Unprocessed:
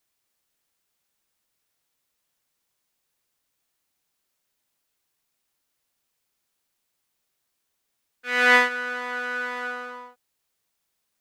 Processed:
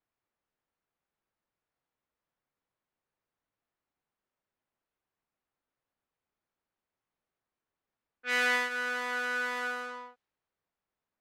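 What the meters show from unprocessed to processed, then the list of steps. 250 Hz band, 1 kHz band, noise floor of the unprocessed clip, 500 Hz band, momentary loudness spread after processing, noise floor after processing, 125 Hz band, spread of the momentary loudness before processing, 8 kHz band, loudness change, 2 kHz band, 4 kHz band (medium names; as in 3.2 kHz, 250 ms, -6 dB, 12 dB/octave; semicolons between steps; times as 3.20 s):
-8.5 dB, -8.5 dB, -78 dBFS, -8.5 dB, 15 LU, under -85 dBFS, no reading, 19 LU, -2.5 dB, -8.0 dB, -7.5 dB, -6.0 dB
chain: level-controlled noise filter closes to 1.4 kHz, open at -28.5 dBFS; treble shelf 4.2 kHz +9 dB; compression 10:1, threshold -19 dBFS, peak gain reduction 10 dB; trim -4 dB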